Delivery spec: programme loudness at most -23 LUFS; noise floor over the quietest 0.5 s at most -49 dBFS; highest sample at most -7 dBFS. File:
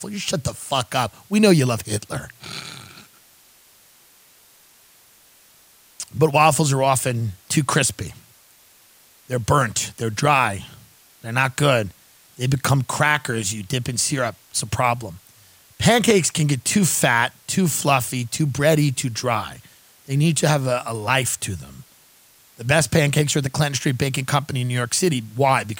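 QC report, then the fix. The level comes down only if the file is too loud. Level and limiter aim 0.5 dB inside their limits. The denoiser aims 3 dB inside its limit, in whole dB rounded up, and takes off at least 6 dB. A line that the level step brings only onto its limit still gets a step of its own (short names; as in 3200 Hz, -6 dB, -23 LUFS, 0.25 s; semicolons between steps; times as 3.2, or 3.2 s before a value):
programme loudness -20.0 LUFS: fail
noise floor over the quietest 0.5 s -53 dBFS: OK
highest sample -3.0 dBFS: fail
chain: gain -3.5 dB; limiter -7.5 dBFS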